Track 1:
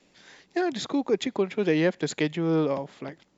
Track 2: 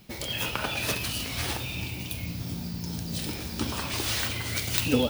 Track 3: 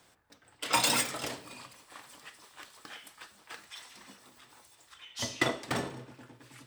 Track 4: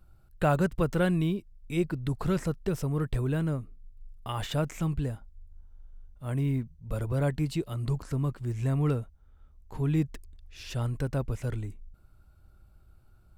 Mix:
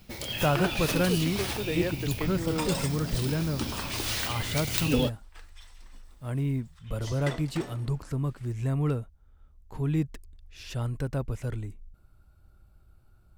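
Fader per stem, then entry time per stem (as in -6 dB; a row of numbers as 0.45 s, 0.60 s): -8.5 dB, -2.0 dB, -8.0 dB, -0.5 dB; 0.00 s, 0.00 s, 1.85 s, 0.00 s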